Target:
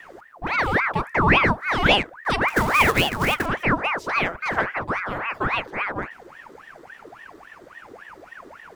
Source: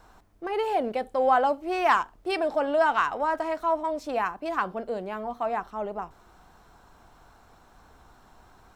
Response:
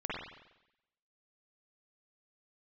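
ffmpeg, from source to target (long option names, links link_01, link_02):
-filter_complex "[0:a]asettb=1/sr,asplit=3[link_01][link_02][link_03];[link_01]atrim=end=2.484[link_04];[link_02]atrim=start=2.48:end=3.46,asetpts=PTS-STARTPTS,afade=type=in:duration=0.004:curve=qsin,afade=type=out:start_time=0.976:duration=0.004:curve=qsin,acrusher=bits=3:mode=log:mix=0:aa=0.000001[link_05];[link_03]atrim=start=3.456[link_06];[link_04][link_05]acrossfade=duration=0.004:curve1=hsin:curve2=qsin[link_07];[link_07][link_06]acrossfade=duration=0.004:curve1=qsin:curve2=hsin,lowshelf=frequency=170:gain=11,aeval=exprs='val(0)*sin(2*PI*1100*n/s+1100*0.7/3.6*sin(2*PI*3.6*n/s))':channel_layout=same,volume=6.5dB"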